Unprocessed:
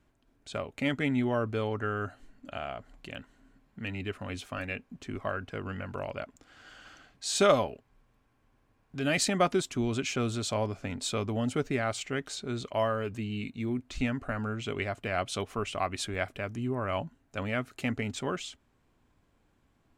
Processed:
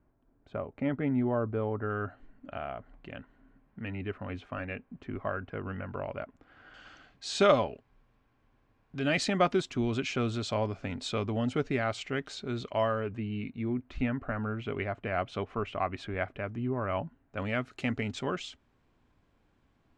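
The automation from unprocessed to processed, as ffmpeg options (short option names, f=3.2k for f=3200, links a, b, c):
-af "asetnsamples=n=441:p=0,asendcmd='1.9 lowpass f 2000;6.74 lowpass f 4600;13 lowpass f 2200;17.4 lowpass f 5400',lowpass=1.2k"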